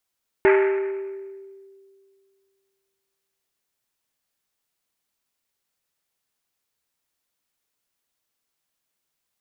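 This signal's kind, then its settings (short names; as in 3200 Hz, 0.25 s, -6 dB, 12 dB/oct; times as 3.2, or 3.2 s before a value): Risset drum length 3.67 s, pitch 390 Hz, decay 2.26 s, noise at 1800 Hz, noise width 1200 Hz, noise 20%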